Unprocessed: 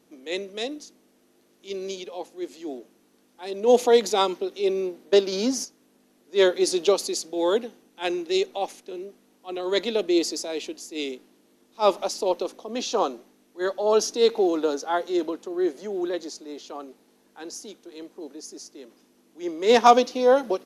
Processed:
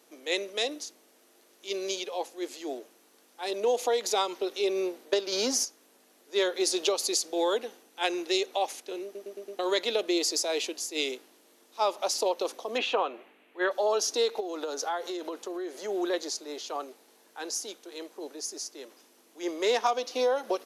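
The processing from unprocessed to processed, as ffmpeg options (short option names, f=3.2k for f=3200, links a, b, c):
-filter_complex "[0:a]asplit=3[a][b][c];[a]afade=t=out:st=12.77:d=0.02[d];[b]highshelf=f=3.8k:t=q:w=3:g=-13.5,afade=t=in:st=12.77:d=0.02,afade=t=out:st=13.7:d=0.02[e];[c]afade=t=in:st=13.7:d=0.02[f];[d][e][f]amix=inputs=3:normalize=0,asplit=3[g][h][i];[g]afade=t=out:st=14.39:d=0.02[j];[h]acompressor=threshold=-30dB:ratio=10:attack=3.2:release=140:knee=1:detection=peak,afade=t=in:st=14.39:d=0.02,afade=t=out:st=15.87:d=0.02[k];[i]afade=t=in:st=15.87:d=0.02[l];[j][k][l]amix=inputs=3:normalize=0,asplit=6[m][n][o][p][q][r];[m]atrim=end=9.152[s];[n]atrim=start=9.038:end=9.152[t];[o]atrim=start=9.038:end=9.152[u];[p]atrim=start=9.038:end=9.152[v];[q]atrim=start=9.038:end=9.152[w];[r]atrim=start=9.588[x];[s][t]acrossfade=d=0.004:c1=hsin:c2=hsin[y];[y][u]acrossfade=d=0.004:c1=hsin:c2=hsin[z];[z][v]acrossfade=d=0.004:c1=hsin:c2=hsin[aa];[aa][w]acrossfade=d=0.004:c1=hsin:c2=hsin[ab];[ab][x]acrossfade=d=0.004:c1=hsin:c2=hsin,highpass=480,highshelf=f=7.7k:g=4,acompressor=threshold=-27dB:ratio=10,volume=4dB"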